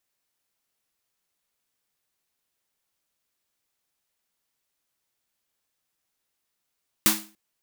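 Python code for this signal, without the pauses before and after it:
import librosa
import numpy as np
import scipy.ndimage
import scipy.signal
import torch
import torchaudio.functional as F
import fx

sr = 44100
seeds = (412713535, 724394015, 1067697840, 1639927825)

y = fx.drum_snare(sr, seeds[0], length_s=0.29, hz=210.0, second_hz=320.0, noise_db=9, noise_from_hz=620.0, decay_s=0.4, noise_decay_s=0.33)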